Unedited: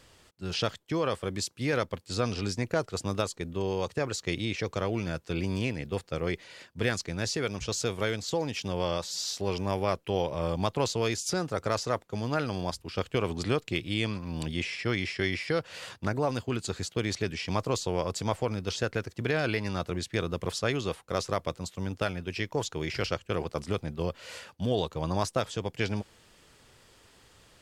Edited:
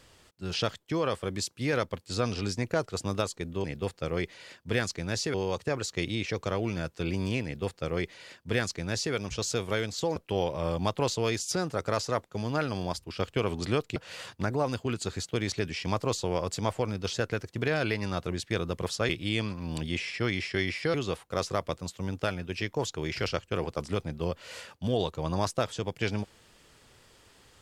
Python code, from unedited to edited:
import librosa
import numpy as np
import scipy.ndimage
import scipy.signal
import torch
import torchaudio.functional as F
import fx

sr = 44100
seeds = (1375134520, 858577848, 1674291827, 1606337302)

y = fx.edit(x, sr, fx.duplicate(start_s=5.74, length_s=1.7, to_s=3.64),
    fx.cut(start_s=8.46, length_s=1.48),
    fx.move(start_s=13.74, length_s=1.85, to_s=20.72), tone=tone)